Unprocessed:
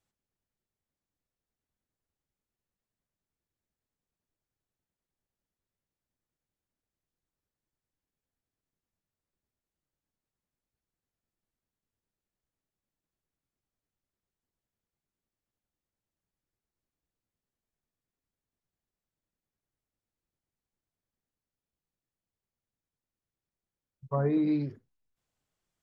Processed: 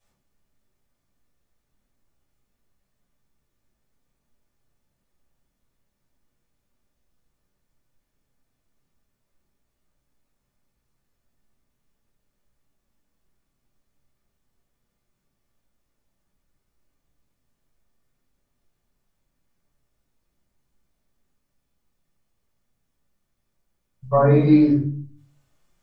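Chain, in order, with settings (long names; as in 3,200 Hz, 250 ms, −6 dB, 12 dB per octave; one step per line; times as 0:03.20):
rectangular room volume 390 cubic metres, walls furnished, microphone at 5.9 metres
level +4 dB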